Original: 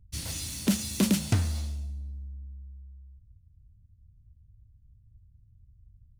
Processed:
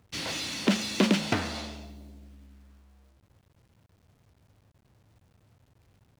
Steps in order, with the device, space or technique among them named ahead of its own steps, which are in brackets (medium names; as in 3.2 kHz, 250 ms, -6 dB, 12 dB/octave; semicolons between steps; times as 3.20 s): phone line with mismatched companding (band-pass 320–3300 Hz; companding laws mixed up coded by mu); trim +7 dB